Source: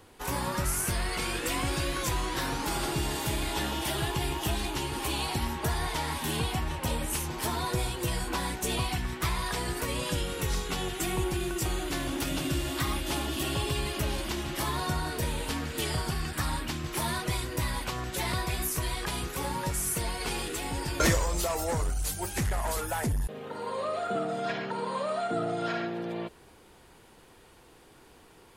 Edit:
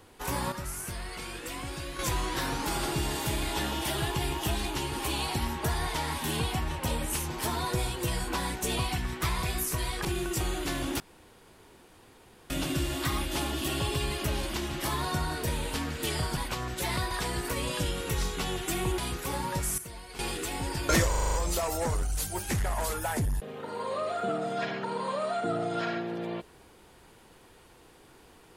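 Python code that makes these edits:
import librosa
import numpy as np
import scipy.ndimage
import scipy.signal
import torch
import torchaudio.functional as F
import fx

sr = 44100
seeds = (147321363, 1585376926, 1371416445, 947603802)

y = fx.edit(x, sr, fx.clip_gain(start_s=0.52, length_s=1.47, db=-7.5),
    fx.swap(start_s=9.43, length_s=1.87, other_s=18.47, other_length_s=0.62),
    fx.insert_room_tone(at_s=12.25, length_s=1.5),
    fx.cut(start_s=16.12, length_s=1.61),
    fx.clip_gain(start_s=19.89, length_s=0.41, db=-11.5),
    fx.stutter(start_s=21.2, slice_s=0.04, count=7), tone=tone)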